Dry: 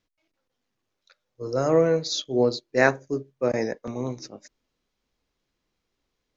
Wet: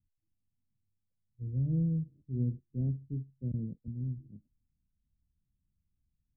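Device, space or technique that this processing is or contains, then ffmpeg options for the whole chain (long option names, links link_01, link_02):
the neighbour's flat through the wall: -filter_complex "[0:a]lowpass=frequency=180:width=0.5412,lowpass=frequency=180:width=1.3066,equalizer=frequency=80:width_type=o:width=0.65:gain=6,asettb=1/sr,asplit=3[link_01][link_02][link_03];[link_01]atrim=end=3.744[link_04];[link_02]atrim=start=3.74:end=4.18,asetpts=PTS-STARTPTS,afade=type=in:duration=0.004:curve=qsin,afade=type=out:start_time=0.436:duration=0.004:curve=qsin,tiltshelf=frequency=970:gain=-3[link_05];[link_03]atrim=start=4.176[link_06];[link_04][link_05]acrossfade=duration=0.004:curve1=hsin:curve2=qsin[link_07];[link_07][link_06]acrossfade=duration=0.004:curve1=qsin:curve2=hsin,volume=2.5dB"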